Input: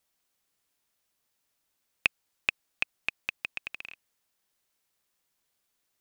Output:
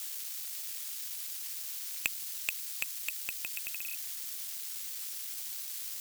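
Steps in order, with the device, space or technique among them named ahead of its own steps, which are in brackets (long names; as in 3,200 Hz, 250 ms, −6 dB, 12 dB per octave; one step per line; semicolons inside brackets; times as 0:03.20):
budget class-D amplifier (gap after every zero crossing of 0.061 ms; spike at every zero crossing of −19.5 dBFS)
dynamic equaliser 1,000 Hz, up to −5 dB, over −51 dBFS, Q 0.88
level −5.5 dB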